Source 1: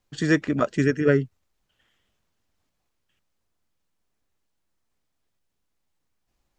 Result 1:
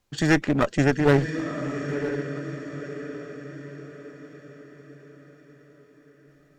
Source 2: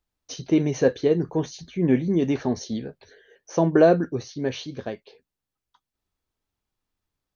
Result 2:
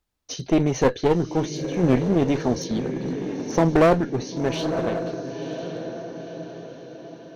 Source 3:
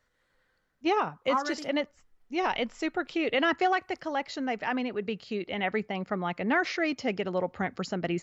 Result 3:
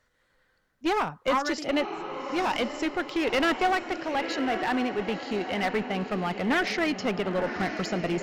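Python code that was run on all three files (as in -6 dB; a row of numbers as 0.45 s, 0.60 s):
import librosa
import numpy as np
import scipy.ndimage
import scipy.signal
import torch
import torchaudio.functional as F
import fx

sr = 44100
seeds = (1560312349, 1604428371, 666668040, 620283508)

y = fx.echo_diffused(x, sr, ms=1006, feedback_pct=46, wet_db=-10)
y = fx.clip_asym(y, sr, top_db=-27.5, bottom_db=-10.0)
y = y * librosa.db_to_amplitude(3.5)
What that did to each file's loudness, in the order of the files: -2.5 LU, 0.0 LU, +2.0 LU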